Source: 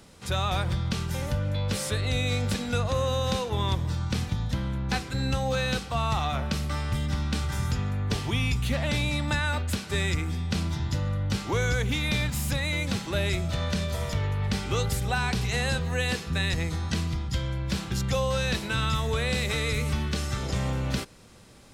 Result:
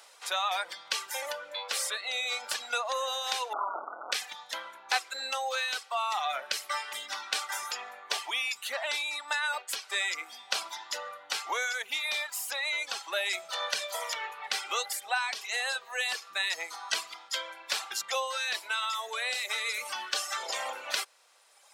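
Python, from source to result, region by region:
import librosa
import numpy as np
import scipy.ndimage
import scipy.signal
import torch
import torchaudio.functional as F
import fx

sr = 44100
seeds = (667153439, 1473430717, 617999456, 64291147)

y = fx.chain(x, sr, fx.clip_1bit(),
    fx.brickwall_lowpass(high_hz=1500.0), at=(3.53, 4.12))
y = fx.dereverb_blind(y, sr, rt60_s=1.9)
y = scipy.signal.sosfilt(scipy.signal.butter(4, 650.0, 'highpass', fs=sr, output='sos'), y)
y = fx.rider(y, sr, range_db=3, speed_s=0.5)
y = y * 10.0 ** (3.0 / 20.0)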